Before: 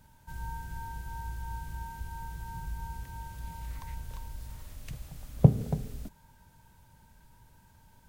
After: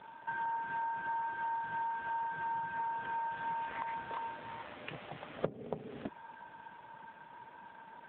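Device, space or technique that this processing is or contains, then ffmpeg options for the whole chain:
voicemail: -af "highpass=390,lowpass=2.7k,acompressor=threshold=-49dB:ratio=10,volume=16dB" -ar 8000 -c:a libopencore_amrnb -b:a 7400

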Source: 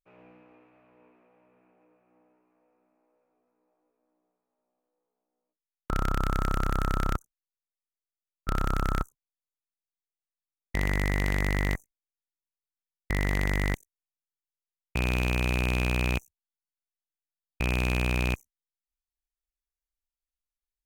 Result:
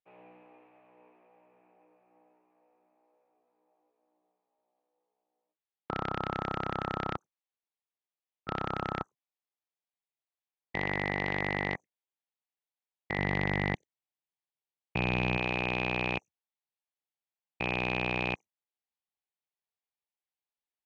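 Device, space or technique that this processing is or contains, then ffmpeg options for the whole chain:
kitchen radio: -filter_complex "[0:a]highpass=180,equalizer=f=250:t=q:w=4:g=-7,equalizer=f=810:t=q:w=4:g=6,equalizer=f=1.4k:t=q:w=4:g=-6,lowpass=f=3.9k:w=0.5412,lowpass=f=3.9k:w=1.3066,asettb=1/sr,asplit=3[a][b][c];[a]atrim=end=13.184[d];[b]atrim=start=13.18:end=15.38,asetpts=PTS-STARTPTS,afade=t=in:d=0.004:c=qsin,afade=t=out:st=2.196:d=0.004:c=qsin,bass=f=250:g=7,treble=f=4k:g=0[e];[c]atrim=start=15.376[f];[d][e]acrossfade=d=0.004:c1=hsin:c2=qsin[g];[g][f]acrossfade=d=0.004:c1=qsin:c2=hsin"

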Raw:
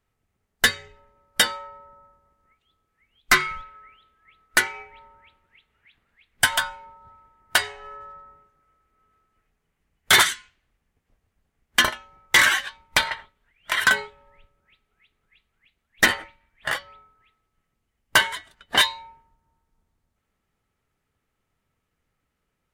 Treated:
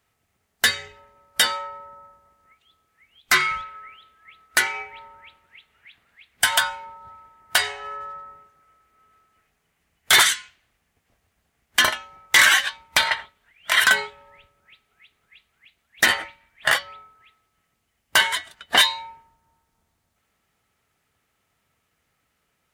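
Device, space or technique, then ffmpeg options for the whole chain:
mastering chain: -af "highpass=55,equalizer=f=690:t=o:w=0.39:g=4,acompressor=threshold=-20dB:ratio=2,tiltshelf=f=1.1k:g=-4,alimiter=level_in=10dB:limit=-1dB:release=50:level=0:latency=1,volume=-4dB"

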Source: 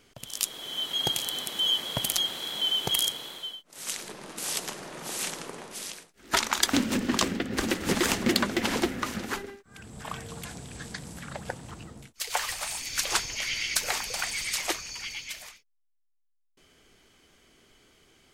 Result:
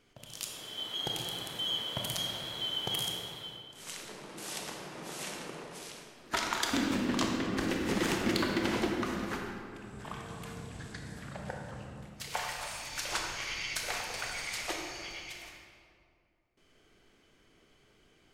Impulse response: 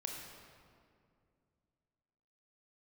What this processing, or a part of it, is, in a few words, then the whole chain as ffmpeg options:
swimming-pool hall: -filter_complex "[1:a]atrim=start_sample=2205[a];[0:a][a]afir=irnorm=-1:irlink=0,highshelf=f=4.8k:g=-7,volume=-3dB"

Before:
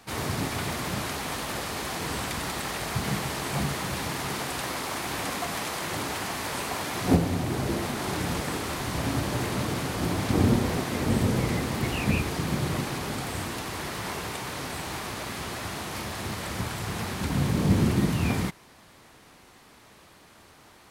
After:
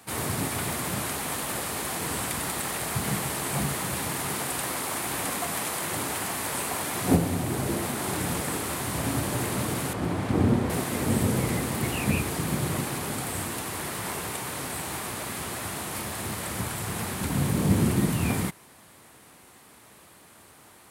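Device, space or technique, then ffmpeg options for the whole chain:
budget condenser microphone: -filter_complex "[0:a]asettb=1/sr,asplit=3[a][b][c];[a]atrim=end=9.934[d];[b]atrim=start=9.93:end=10.7,asetpts=PTS-STARTPTS,afade=t=in:d=0.004:c=qsin,afade=t=out:st=0.766:d=0.004:c=qsin,aemphasis=mode=reproduction:type=75kf[e];[c]atrim=start=10.696[f];[d][e]acrossfade=d=0.004:c1=hsin:c2=qsin[g];[g][f]acrossfade=d=0.004:c1=qsin:c2=hsin,highpass=68,highshelf=f=7.1k:t=q:w=1.5:g=6.5"

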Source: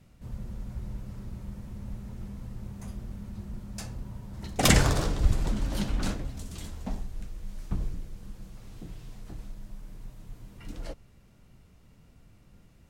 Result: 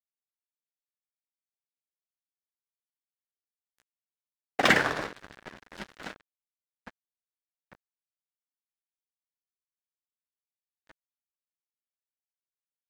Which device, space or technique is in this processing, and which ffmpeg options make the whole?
pocket radio on a weak battery: -af "highpass=320,lowpass=3.1k,aeval=exprs='sgn(val(0))*max(abs(val(0))-0.0158,0)':c=same,equalizer=f=1.7k:t=o:w=0.51:g=7.5,volume=4dB"

